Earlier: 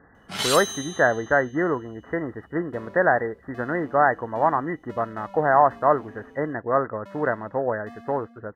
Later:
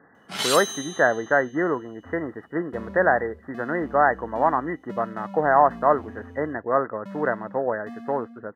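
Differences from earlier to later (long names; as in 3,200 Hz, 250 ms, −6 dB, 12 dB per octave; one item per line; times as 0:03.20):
second sound: remove high-pass filter 290 Hz 24 dB per octave
master: add high-pass filter 160 Hz 12 dB per octave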